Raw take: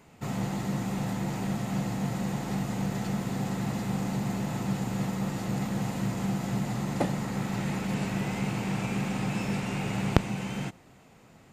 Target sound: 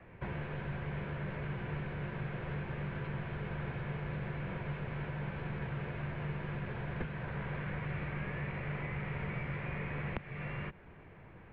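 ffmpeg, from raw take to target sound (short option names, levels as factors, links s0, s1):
-filter_complex "[0:a]acrossover=split=230|1600[s0][s1][s2];[s0]acompressor=threshold=0.00708:ratio=4[s3];[s1]acompressor=threshold=0.00562:ratio=4[s4];[s2]acompressor=threshold=0.00501:ratio=4[s5];[s3][s4][s5]amix=inputs=3:normalize=0,highpass=f=170:t=q:w=0.5412,highpass=f=170:t=q:w=1.307,lowpass=f=3000:t=q:w=0.5176,lowpass=f=3000:t=q:w=0.7071,lowpass=f=3000:t=q:w=1.932,afreqshift=-340,volume=1.41"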